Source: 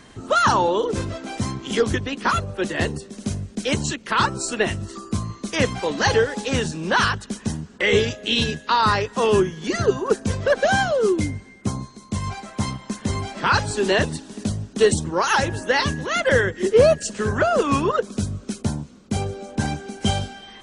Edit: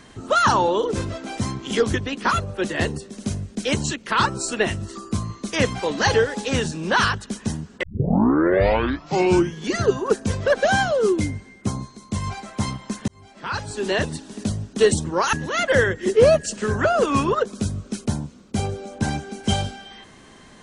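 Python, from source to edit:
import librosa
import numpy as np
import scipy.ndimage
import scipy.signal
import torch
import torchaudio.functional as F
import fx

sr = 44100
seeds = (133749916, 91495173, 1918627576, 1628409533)

y = fx.edit(x, sr, fx.tape_start(start_s=7.83, length_s=1.71),
    fx.fade_in_span(start_s=13.08, length_s=1.25),
    fx.cut(start_s=15.33, length_s=0.57), tone=tone)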